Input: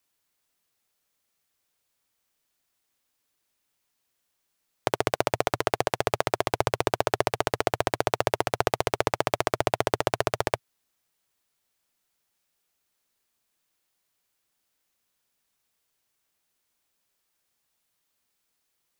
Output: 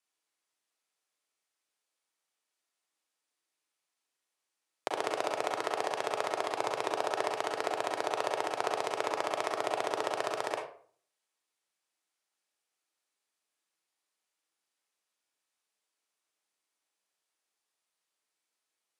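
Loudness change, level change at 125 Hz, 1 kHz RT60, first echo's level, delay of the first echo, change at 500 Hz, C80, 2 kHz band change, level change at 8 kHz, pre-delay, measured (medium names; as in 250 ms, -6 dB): -6.0 dB, -22.0 dB, 0.45 s, no echo, no echo, -6.5 dB, 10.0 dB, -6.0 dB, -7.0 dB, 35 ms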